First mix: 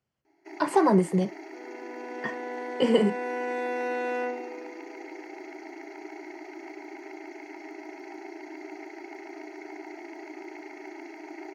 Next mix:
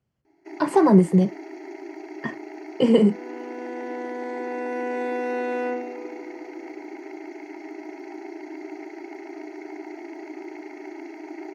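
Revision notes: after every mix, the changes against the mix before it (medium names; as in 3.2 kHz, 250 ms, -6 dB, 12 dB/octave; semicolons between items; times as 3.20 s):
second sound: entry +1.45 s; master: add bass shelf 340 Hz +10.5 dB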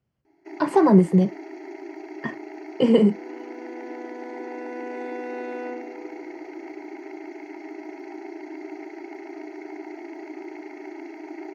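second sound -6.5 dB; master: add peaking EQ 9.5 kHz -5 dB 1.2 oct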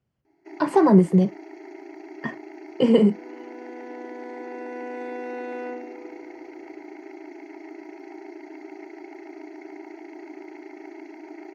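first sound: send off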